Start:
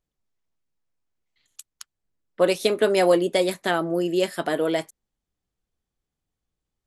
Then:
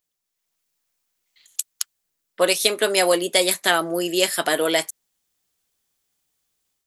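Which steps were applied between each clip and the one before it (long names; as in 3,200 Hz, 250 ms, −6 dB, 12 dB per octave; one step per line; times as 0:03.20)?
spectral tilt +3.5 dB per octave
automatic gain control gain up to 7 dB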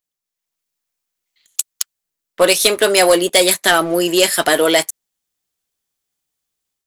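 leveller curve on the samples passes 2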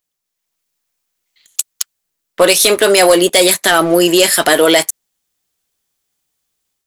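brickwall limiter −8 dBFS, peak gain reduction 6.5 dB
level +6.5 dB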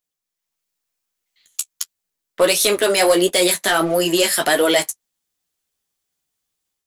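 flanger 1.5 Hz, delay 9.3 ms, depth 5.6 ms, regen −23%
level −2.5 dB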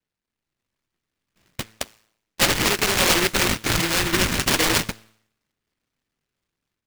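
decimation without filtering 30×
tuned comb filter 110 Hz, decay 0.66 s, harmonics all, mix 40%
short delay modulated by noise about 1,800 Hz, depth 0.45 ms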